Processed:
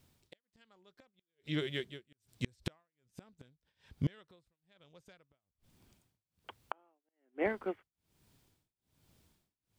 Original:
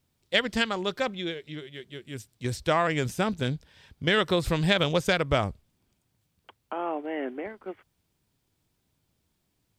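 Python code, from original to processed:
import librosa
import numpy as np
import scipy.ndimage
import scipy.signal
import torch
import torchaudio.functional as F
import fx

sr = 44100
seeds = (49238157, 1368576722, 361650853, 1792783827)

y = fx.gate_flip(x, sr, shuts_db=-24.0, range_db=-40)
y = y * (1.0 - 0.98 / 2.0 + 0.98 / 2.0 * np.cos(2.0 * np.pi * 1.2 * (np.arange(len(y)) / sr)))
y = F.gain(torch.from_numpy(y), 5.5).numpy()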